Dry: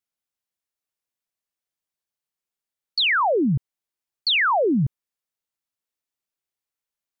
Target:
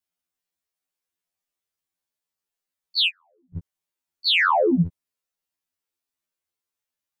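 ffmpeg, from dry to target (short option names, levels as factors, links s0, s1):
-filter_complex "[0:a]acontrast=72,asplit=3[s0][s1][s2];[s0]afade=t=out:st=3.07:d=0.02[s3];[s1]agate=range=0.00501:threshold=0.794:ratio=16:detection=peak,afade=t=in:st=3.07:d=0.02,afade=t=out:st=3.55:d=0.02[s4];[s2]afade=t=in:st=3.55:d=0.02[s5];[s3][s4][s5]amix=inputs=3:normalize=0,afftfilt=real='re*2*eq(mod(b,4),0)':imag='im*2*eq(mod(b,4),0)':win_size=2048:overlap=0.75,volume=0.668"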